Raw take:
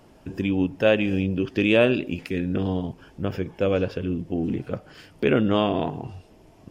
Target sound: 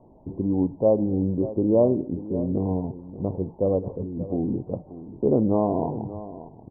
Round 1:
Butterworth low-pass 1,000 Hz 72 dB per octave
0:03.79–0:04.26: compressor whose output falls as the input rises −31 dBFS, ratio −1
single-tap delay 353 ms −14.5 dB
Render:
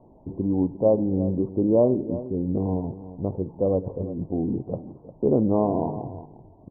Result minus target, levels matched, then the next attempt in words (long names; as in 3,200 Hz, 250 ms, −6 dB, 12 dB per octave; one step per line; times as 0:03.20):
echo 231 ms early
Butterworth low-pass 1,000 Hz 72 dB per octave
0:03.79–0:04.26: compressor whose output falls as the input rises −31 dBFS, ratio −1
single-tap delay 584 ms −14.5 dB